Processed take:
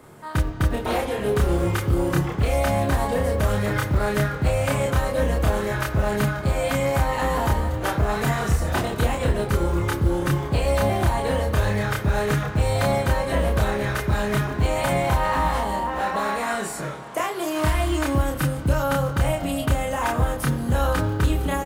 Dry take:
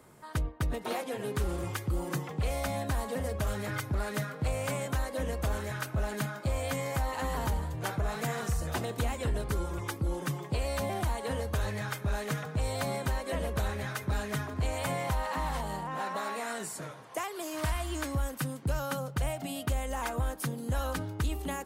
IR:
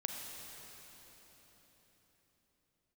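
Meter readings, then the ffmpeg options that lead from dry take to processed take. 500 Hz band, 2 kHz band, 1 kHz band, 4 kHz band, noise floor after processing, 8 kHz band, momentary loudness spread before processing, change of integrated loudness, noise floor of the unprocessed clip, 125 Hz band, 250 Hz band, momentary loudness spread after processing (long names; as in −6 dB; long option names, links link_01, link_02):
+11.5 dB, +10.0 dB, +11.0 dB, +8.5 dB, −31 dBFS, +6.0 dB, 3 LU, +10.5 dB, −44 dBFS, +10.5 dB, +11.5 dB, 3 LU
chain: -filter_complex "[0:a]asplit=2[link_01][link_02];[link_02]adelay=29,volume=-2dB[link_03];[link_01][link_03]amix=inputs=2:normalize=0,acrusher=bits=8:mode=log:mix=0:aa=0.000001,asplit=2[link_04][link_05];[1:a]atrim=start_sample=2205,asetrate=79380,aresample=44100,lowpass=4200[link_06];[link_05][link_06]afir=irnorm=-1:irlink=0,volume=0.5dB[link_07];[link_04][link_07]amix=inputs=2:normalize=0,volume=4.5dB"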